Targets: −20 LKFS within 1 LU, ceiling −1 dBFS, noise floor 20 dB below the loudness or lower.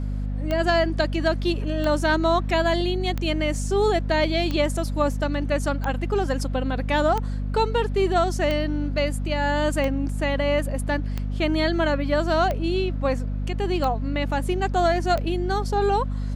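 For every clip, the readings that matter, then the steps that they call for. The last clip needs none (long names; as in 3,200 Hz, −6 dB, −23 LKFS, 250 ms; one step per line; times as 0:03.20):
number of clicks 12; mains hum 50 Hz; hum harmonics up to 250 Hz; level of the hum −24 dBFS; integrated loudness −23.5 LKFS; sample peak −8.5 dBFS; target loudness −20.0 LKFS
→ click removal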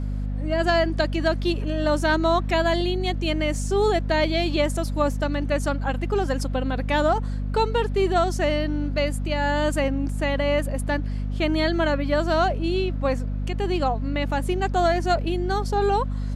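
number of clicks 0; mains hum 50 Hz; hum harmonics up to 250 Hz; level of the hum −24 dBFS
→ mains-hum notches 50/100/150/200/250 Hz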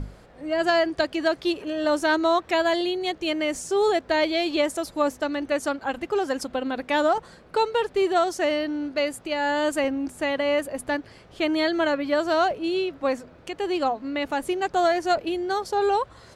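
mains hum none found; integrated loudness −24.5 LKFS; sample peak −8.5 dBFS; target loudness −20.0 LKFS
→ level +4.5 dB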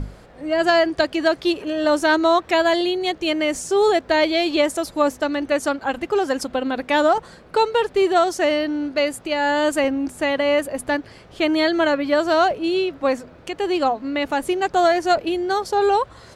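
integrated loudness −20.0 LKFS; sample peak −4.0 dBFS; background noise floor −46 dBFS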